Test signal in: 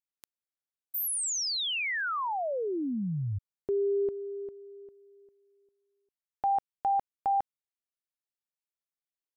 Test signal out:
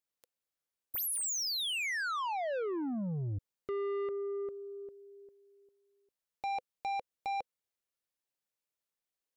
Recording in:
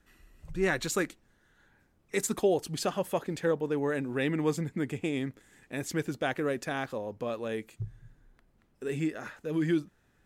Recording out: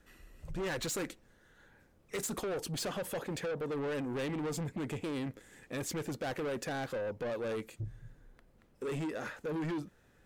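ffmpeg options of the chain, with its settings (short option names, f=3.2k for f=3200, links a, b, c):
-af "lowpass=f=1.2k:p=1,equalizer=f=510:t=o:w=0.37:g=6.5,acompressor=threshold=-28dB:ratio=10:attack=22:release=42:knee=6,crystalizer=i=5.5:c=0,asoftclip=type=tanh:threshold=-35dB,volume=2dB"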